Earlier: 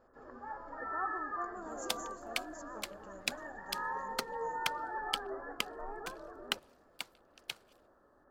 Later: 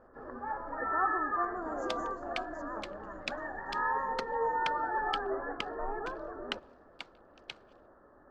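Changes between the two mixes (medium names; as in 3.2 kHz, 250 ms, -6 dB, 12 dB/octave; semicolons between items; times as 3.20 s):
first sound +7.5 dB; master: add distance through air 150 m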